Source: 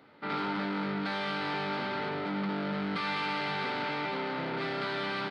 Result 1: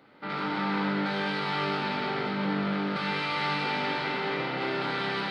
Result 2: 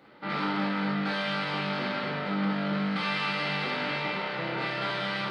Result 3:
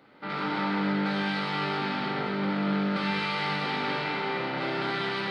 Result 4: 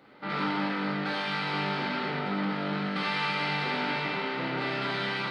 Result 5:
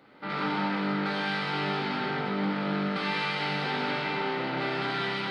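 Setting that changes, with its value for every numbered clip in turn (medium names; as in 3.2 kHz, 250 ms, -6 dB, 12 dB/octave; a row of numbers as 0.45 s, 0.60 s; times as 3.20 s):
gated-style reverb, gate: 500 ms, 90 ms, 340 ms, 140 ms, 230 ms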